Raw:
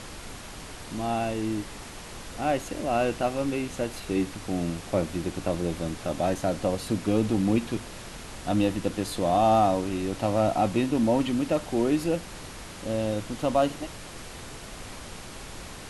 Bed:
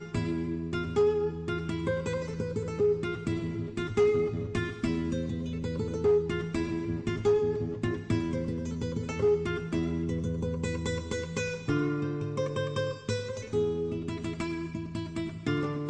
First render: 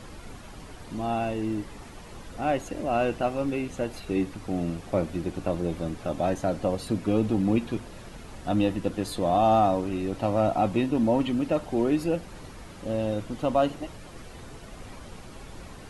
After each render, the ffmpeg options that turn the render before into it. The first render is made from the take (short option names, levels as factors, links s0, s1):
-af "afftdn=nr=9:nf=-42"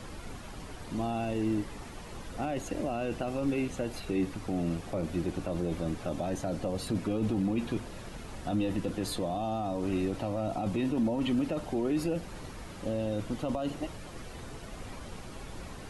-filter_complex "[0:a]alimiter=limit=0.0841:level=0:latency=1:release=10,acrossover=split=410|3000[s0][s1][s2];[s1]acompressor=threshold=0.02:ratio=6[s3];[s0][s3][s2]amix=inputs=3:normalize=0"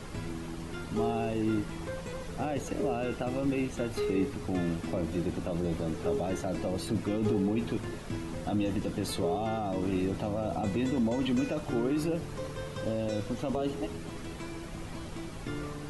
-filter_complex "[1:a]volume=0.376[s0];[0:a][s0]amix=inputs=2:normalize=0"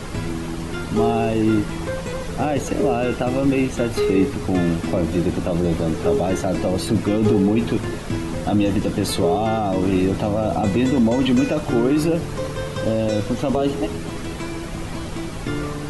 -af "volume=3.76"